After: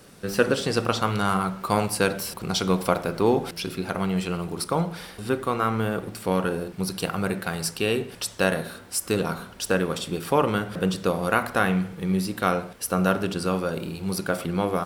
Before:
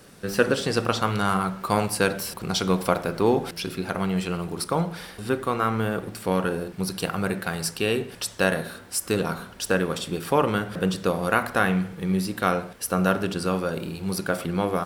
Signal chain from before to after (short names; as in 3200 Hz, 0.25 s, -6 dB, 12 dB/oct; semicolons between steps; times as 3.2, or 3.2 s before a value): bell 1700 Hz -2.5 dB 0.26 oct